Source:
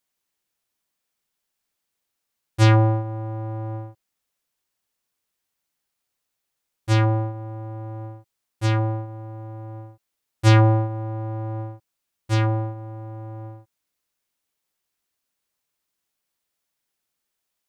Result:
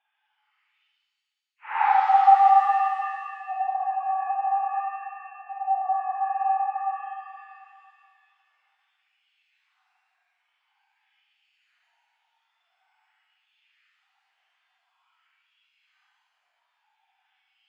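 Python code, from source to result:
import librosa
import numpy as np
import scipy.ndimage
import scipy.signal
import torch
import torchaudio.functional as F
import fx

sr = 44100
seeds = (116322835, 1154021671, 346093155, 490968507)

y = fx.sine_speech(x, sr)
y = fx.rider(y, sr, range_db=4, speed_s=0.5)
y = fx.filter_lfo_highpass(y, sr, shape='sine', hz=2.3, low_hz=310.0, high_hz=3000.0, q=3.0)
y = fx.paulstretch(y, sr, seeds[0], factor=4.8, window_s=0.1, from_s=12.08)
y = fx.rev_shimmer(y, sr, seeds[1], rt60_s=2.1, semitones=7, shimmer_db=-8, drr_db=2.0)
y = y * librosa.db_to_amplitude(-5.0)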